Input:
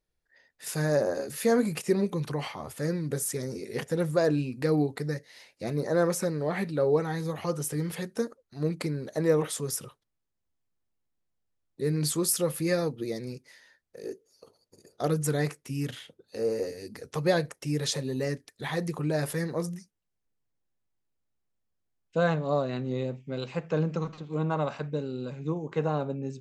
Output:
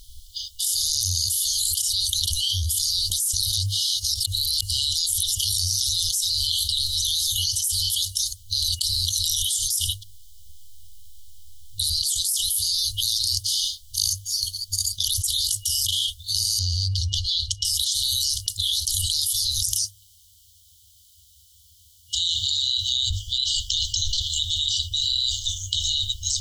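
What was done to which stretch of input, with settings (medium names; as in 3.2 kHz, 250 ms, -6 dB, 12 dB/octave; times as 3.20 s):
3.34–5.89 s: reverse
16.59–17.65 s: distance through air 170 m
19.62–23.11 s: high-pass 76 Hz
whole clip: hum notches 50/100/150 Hz; FFT band-reject 100–2900 Hz; level flattener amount 100%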